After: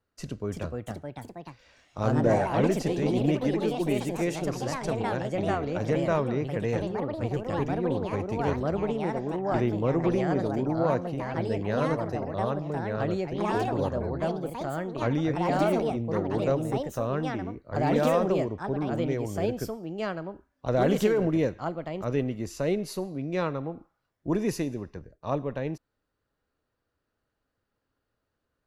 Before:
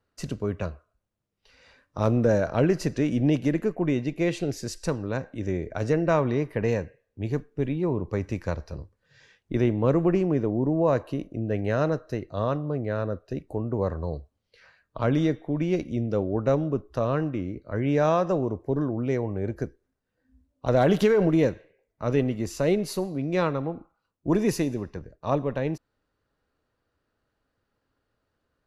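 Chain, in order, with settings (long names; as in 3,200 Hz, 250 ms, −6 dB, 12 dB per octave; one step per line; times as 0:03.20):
delay with pitch and tempo change per echo 369 ms, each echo +3 semitones, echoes 3
level −4 dB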